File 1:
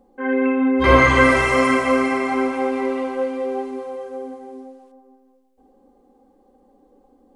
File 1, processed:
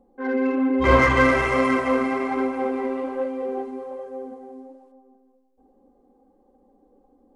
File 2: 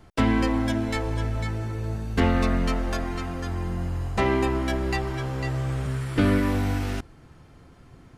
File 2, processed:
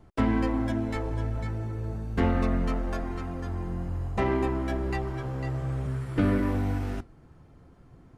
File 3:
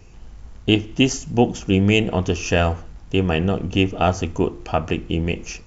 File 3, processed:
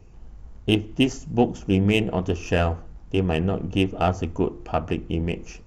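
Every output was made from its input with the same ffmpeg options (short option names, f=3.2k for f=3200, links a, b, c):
-filter_complex "[0:a]flanger=delay=0.3:depth=6.2:regen=-75:speed=1.2:shape=sinusoidal,asplit=2[a][b];[b]adynamicsmooth=sensitivity=1.5:basefreq=1.8k,volume=2.5dB[c];[a][c]amix=inputs=2:normalize=0,volume=-6dB"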